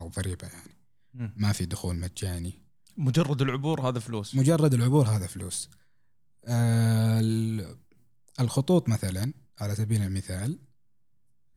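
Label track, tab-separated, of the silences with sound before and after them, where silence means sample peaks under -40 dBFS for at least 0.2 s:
0.670000	1.150000	silence
2.510000	2.900000	silence
5.720000	6.470000	silence
7.730000	8.280000	silence
9.320000	9.580000	silence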